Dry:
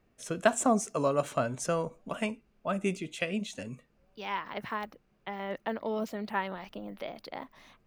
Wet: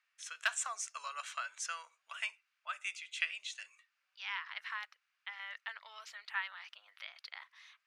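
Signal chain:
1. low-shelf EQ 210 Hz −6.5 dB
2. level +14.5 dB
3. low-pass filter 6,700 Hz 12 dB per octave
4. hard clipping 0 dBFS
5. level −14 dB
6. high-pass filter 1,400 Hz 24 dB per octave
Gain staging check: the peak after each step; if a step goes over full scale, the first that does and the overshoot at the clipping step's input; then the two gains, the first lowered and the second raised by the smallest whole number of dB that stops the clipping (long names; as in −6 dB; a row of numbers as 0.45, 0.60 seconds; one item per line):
−10.5, +4.0, +4.0, 0.0, −14.0, −17.0 dBFS
step 2, 4.0 dB
step 2 +10.5 dB, step 5 −10 dB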